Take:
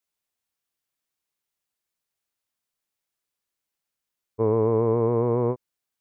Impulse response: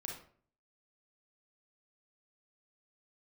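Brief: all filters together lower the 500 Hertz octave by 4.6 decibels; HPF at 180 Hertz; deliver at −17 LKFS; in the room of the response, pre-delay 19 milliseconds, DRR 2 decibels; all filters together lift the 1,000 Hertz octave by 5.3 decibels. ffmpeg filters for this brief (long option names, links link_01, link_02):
-filter_complex "[0:a]highpass=180,equalizer=frequency=500:width_type=o:gain=-6.5,equalizer=frequency=1000:width_type=o:gain=7.5,asplit=2[link_01][link_02];[1:a]atrim=start_sample=2205,adelay=19[link_03];[link_02][link_03]afir=irnorm=-1:irlink=0,volume=-0.5dB[link_04];[link_01][link_04]amix=inputs=2:normalize=0,volume=7.5dB"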